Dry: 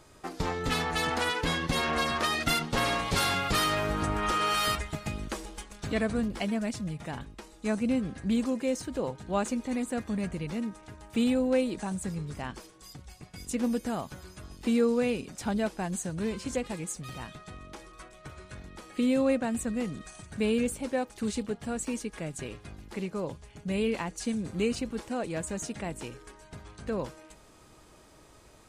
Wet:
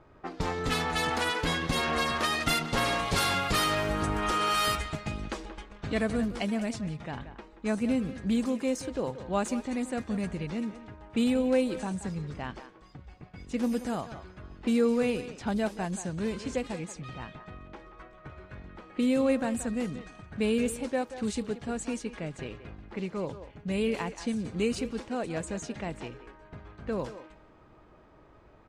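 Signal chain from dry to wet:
surface crackle 250 per second −54 dBFS
far-end echo of a speakerphone 180 ms, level −11 dB
low-pass that shuts in the quiet parts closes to 1,600 Hz, open at −26 dBFS

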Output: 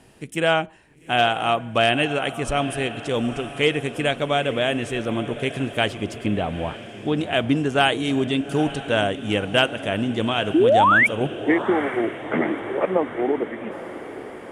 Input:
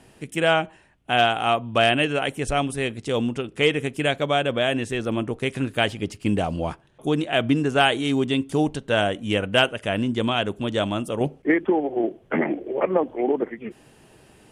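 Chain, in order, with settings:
0:06.26–0:07.17: elliptic low-pass filter 4,000 Hz
0:10.54–0:11.07: sound drawn into the spectrogram rise 290–2,400 Hz −15 dBFS
feedback delay with all-pass diffusion 872 ms, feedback 58%, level −13.5 dB

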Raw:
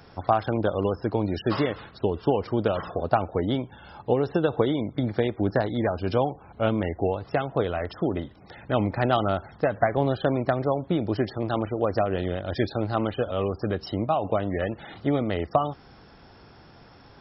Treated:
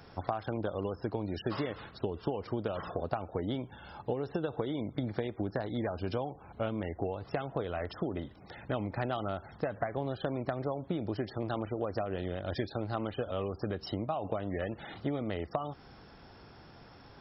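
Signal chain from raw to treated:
downward compressor, threshold −27 dBFS, peak gain reduction 11.5 dB
level −3 dB

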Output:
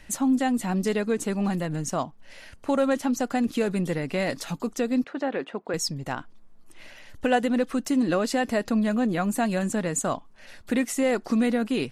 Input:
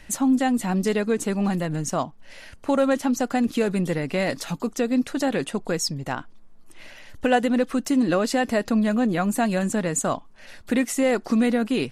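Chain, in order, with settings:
0:05.04–0:05.74: band-pass filter 300–2,300 Hz
level −2.5 dB

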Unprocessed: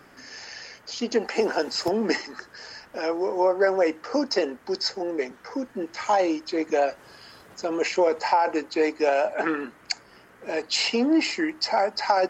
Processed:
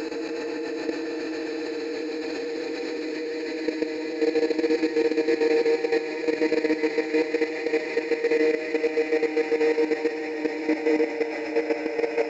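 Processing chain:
low-shelf EQ 100 Hz +6 dB
mains-hum notches 50/100/150/200/250/300/350 Hz
extreme stretch with random phases 37×, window 0.50 s, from 0:08.62
bucket-brigade delay 138 ms, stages 4,096, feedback 84%, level −5 dB
output level in coarse steps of 10 dB

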